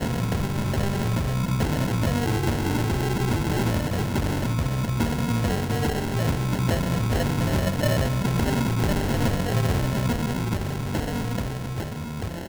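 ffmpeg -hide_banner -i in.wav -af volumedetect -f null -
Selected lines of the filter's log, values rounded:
mean_volume: -23.9 dB
max_volume: -10.9 dB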